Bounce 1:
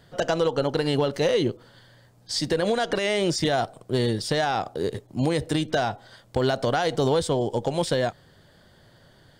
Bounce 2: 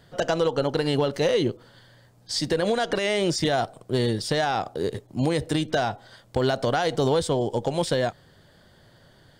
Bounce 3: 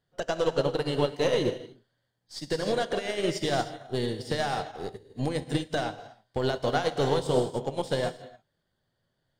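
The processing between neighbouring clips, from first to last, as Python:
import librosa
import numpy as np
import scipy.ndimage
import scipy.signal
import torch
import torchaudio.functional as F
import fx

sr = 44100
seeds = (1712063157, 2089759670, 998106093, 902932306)

y1 = x
y2 = np.where(y1 < 0.0, 10.0 ** (-3.0 / 20.0) * y1, y1)
y2 = fx.rev_gated(y2, sr, seeds[0], gate_ms=340, shape='flat', drr_db=3.5)
y2 = fx.upward_expand(y2, sr, threshold_db=-35.0, expansion=2.5)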